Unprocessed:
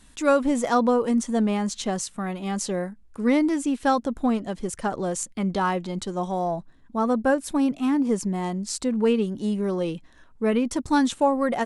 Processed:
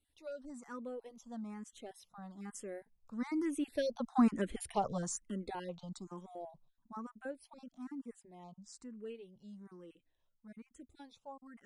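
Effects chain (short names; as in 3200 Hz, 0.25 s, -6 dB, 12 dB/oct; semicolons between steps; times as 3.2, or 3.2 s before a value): random spectral dropouts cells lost 22%; Doppler pass-by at 4.43, 7 m/s, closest 2.4 m; endless phaser +1.1 Hz; gain -1 dB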